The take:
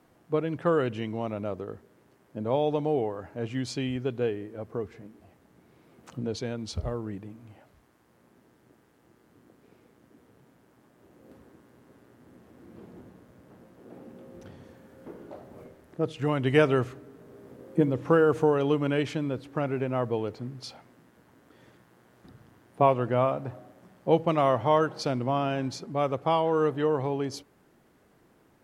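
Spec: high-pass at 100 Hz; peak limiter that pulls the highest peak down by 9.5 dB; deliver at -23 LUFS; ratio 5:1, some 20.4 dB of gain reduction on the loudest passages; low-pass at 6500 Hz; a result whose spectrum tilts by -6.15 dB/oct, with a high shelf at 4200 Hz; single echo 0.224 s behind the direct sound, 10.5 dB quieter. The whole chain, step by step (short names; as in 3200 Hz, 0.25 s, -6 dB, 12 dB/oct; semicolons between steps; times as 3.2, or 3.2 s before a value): HPF 100 Hz; LPF 6500 Hz; high shelf 4200 Hz -8 dB; compressor 5:1, threshold -40 dBFS; limiter -34.5 dBFS; echo 0.224 s -10.5 dB; gain +23.5 dB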